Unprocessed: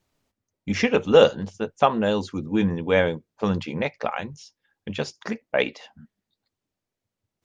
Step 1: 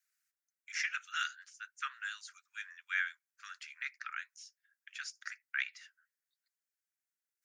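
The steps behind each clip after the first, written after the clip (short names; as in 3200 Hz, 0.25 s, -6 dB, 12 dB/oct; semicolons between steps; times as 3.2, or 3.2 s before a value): steep high-pass 1400 Hz 72 dB/oct; bell 3300 Hz -14.5 dB 1.3 oct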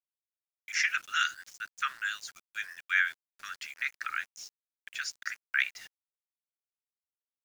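sample gate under -56 dBFS; gain +7.5 dB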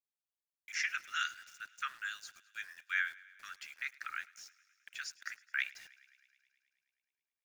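thinning echo 0.106 s, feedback 76%, high-pass 740 Hz, level -22 dB; gain -7 dB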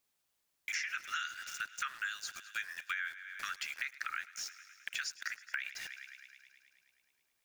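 limiter -28 dBFS, peak gain reduction 9 dB; compressor 5:1, threshold -51 dBFS, peak gain reduction 15 dB; gain +14.5 dB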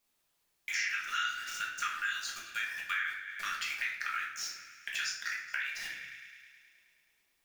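shoebox room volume 180 m³, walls mixed, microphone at 1.3 m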